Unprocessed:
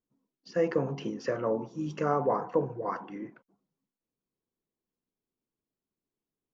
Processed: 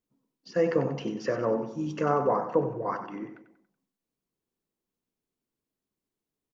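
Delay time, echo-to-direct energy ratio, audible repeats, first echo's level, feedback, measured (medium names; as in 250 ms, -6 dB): 94 ms, -9.5 dB, 4, -10.5 dB, 42%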